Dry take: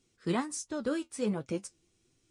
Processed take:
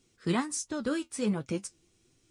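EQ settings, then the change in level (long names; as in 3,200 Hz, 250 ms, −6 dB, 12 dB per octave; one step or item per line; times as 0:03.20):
dynamic equaliser 550 Hz, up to −5 dB, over −44 dBFS, Q 0.87
+4.0 dB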